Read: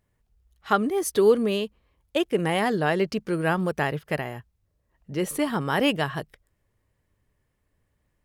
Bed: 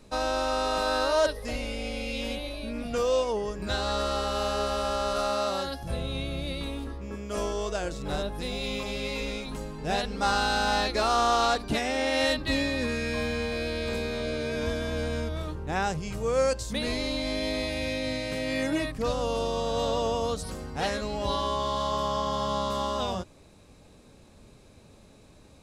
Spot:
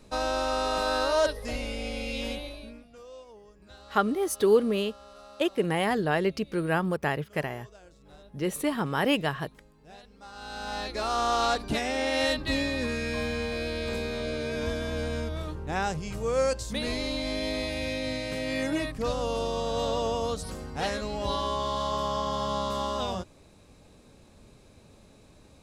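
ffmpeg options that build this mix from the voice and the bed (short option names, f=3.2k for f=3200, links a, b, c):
-filter_complex "[0:a]adelay=3250,volume=-2.5dB[a];[1:a]volume=20dB,afade=t=out:st=2.28:d=0.58:silence=0.0891251,afade=t=in:st=10.32:d=1.2:silence=0.0944061[b];[a][b]amix=inputs=2:normalize=0"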